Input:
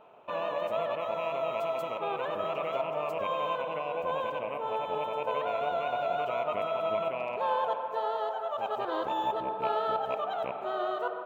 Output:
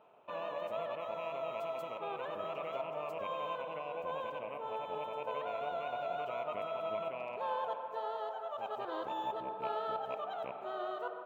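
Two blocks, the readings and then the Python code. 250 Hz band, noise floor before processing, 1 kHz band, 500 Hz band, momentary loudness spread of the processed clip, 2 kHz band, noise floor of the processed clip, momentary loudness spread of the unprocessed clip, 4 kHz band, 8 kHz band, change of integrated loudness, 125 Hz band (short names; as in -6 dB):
-7.5 dB, -38 dBFS, -7.5 dB, -7.5 dB, 3 LU, -7.5 dB, -45 dBFS, 3 LU, -7.5 dB, n/a, -7.5 dB, -7.5 dB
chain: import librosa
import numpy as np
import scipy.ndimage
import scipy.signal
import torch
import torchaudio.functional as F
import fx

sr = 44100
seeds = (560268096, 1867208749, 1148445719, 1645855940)

y = scipy.signal.sosfilt(scipy.signal.butter(2, 63.0, 'highpass', fs=sr, output='sos'), x)
y = F.gain(torch.from_numpy(y), -7.5).numpy()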